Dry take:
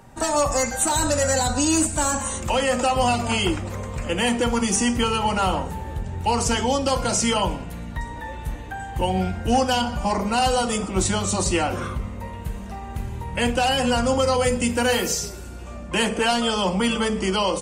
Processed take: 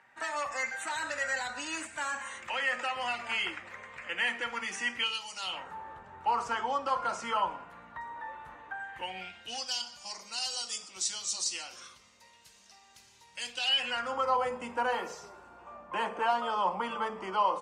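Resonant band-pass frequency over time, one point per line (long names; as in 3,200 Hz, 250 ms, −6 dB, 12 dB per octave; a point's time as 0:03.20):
resonant band-pass, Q 2.6
0:04.95 1,900 Hz
0:05.31 6,800 Hz
0:05.74 1,200 Hz
0:08.69 1,200 Hz
0:09.75 5,200 Hz
0:13.43 5,200 Hz
0:14.31 1,000 Hz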